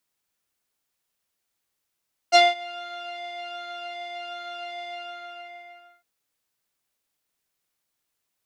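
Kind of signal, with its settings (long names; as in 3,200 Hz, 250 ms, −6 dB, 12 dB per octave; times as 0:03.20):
subtractive patch with pulse-width modulation F5, sub −19.5 dB, noise −28 dB, filter lowpass, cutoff 2,100 Hz, Q 2.4, filter envelope 1.5 octaves, filter decay 0.09 s, attack 34 ms, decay 0.19 s, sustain −23.5 dB, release 1.15 s, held 2.56 s, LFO 1.3 Hz, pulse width 39%, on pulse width 13%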